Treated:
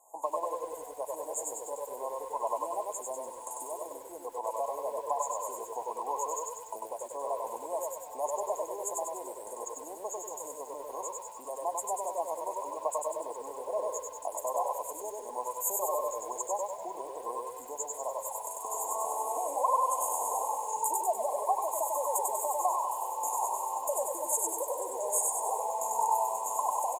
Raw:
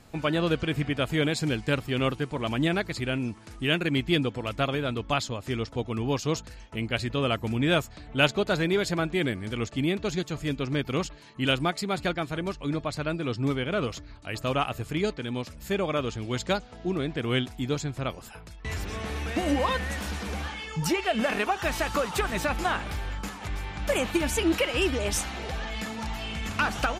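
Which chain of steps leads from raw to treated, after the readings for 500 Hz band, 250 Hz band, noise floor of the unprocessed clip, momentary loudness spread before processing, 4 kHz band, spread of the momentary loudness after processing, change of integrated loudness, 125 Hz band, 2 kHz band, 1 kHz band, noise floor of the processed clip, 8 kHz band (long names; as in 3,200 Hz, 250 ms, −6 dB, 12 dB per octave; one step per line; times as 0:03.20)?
−5.0 dB, −25.0 dB, −46 dBFS, 9 LU, below −25 dB, 10 LU, −5.0 dB, below −40 dB, below −30 dB, +2.5 dB, −46 dBFS, +5.5 dB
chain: camcorder AGC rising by 35 dB per second
high-pass filter 720 Hz 24 dB per octave
dynamic equaliser 2,800 Hz, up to −6 dB, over −42 dBFS, Q 0.96
linear-phase brick-wall band-stop 1,100–6,500 Hz
on a send: repeating echo 96 ms, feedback 37%, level −4 dB
on the sum: feedback echo at a low word length 98 ms, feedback 55%, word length 9 bits, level −6 dB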